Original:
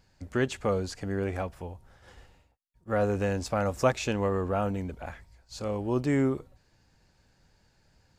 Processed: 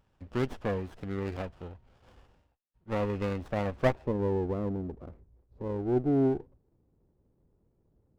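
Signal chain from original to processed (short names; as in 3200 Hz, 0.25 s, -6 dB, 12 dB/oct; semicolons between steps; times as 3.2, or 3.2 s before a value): low-pass sweep 2900 Hz -> 400 Hz, 3.66–4.21; running maximum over 17 samples; gain -4.5 dB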